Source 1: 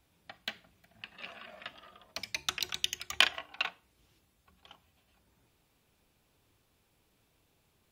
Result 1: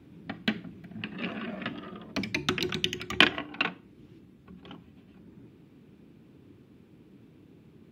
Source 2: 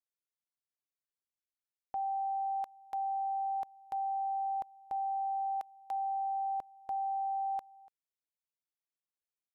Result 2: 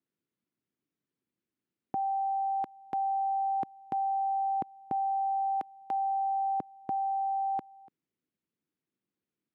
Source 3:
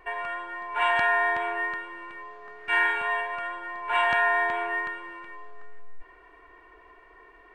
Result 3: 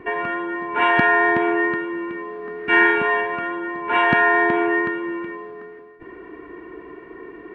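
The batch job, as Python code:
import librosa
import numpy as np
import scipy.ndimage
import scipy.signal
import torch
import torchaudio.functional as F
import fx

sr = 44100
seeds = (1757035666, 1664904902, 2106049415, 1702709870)

y = scipy.signal.sosfilt(scipy.signal.butter(2, 180.0, 'highpass', fs=sr, output='sos'), x)
y = fx.bass_treble(y, sr, bass_db=6, treble_db=-15)
y = fx.rider(y, sr, range_db=3, speed_s=2.0)
y = fx.low_shelf_res(y, sr, hz=470.0, db=12.0, q=1.5)
y = y * librosa.db_to_amplitude(7.0)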